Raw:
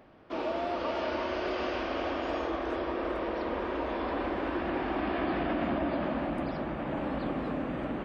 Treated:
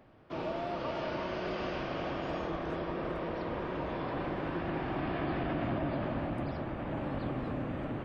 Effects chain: octave divider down 1 oct, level -1 dB; trim -4 dB

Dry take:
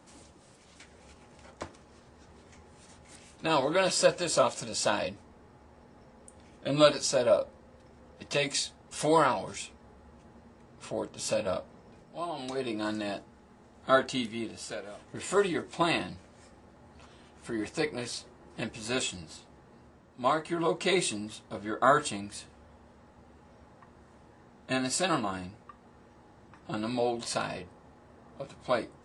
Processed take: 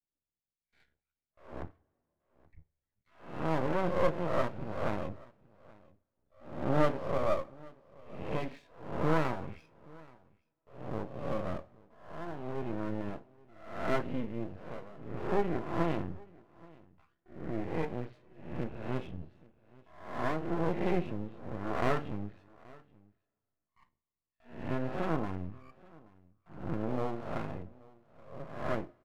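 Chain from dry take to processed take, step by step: reverse spectral sustain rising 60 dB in 0.76 s; spectral noise reduction 26 dB; gate with hold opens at -49 dBFS; low-pass 2.5 kHz 24 dB/octave; tilt EQ -4 dB/octave; half-wave rectifier; delay 828 ms -24 dB; two-slope reverb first 0.41 s, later 2.5 s, from -20 dB, DRR 16.5 dB; trim -6.5 dB

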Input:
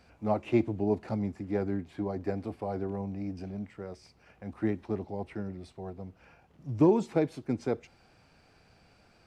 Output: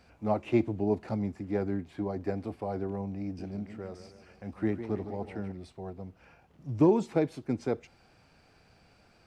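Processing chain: 3.23–5.52 s: modulated delay 150 ms, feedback 54%, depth 138 cents, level -10.5 dB

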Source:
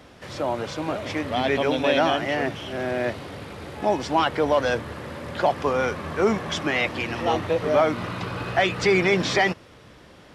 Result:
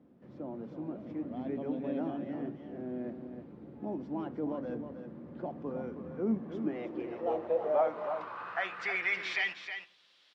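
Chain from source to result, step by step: band-pass sweep 240 Hz -> 3.8 kHz, 6.37–9.95 s; delay 316 ms -8.5 dB; reverberation RT60 0.45 s, pre-delay 6 ms, DRR 12.5 dB; trim -5 dB

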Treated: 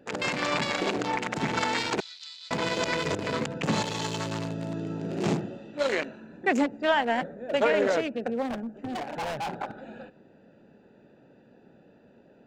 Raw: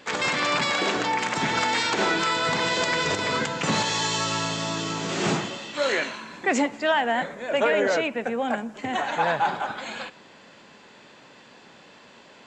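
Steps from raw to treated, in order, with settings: local Wiener filter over 41 samples; 2.00–2.51 s: ladder band-pass 4.6 kHz, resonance 60%; 8.47–9.49 s: hard clipper -29.5 dBFS, distortion -14 dB

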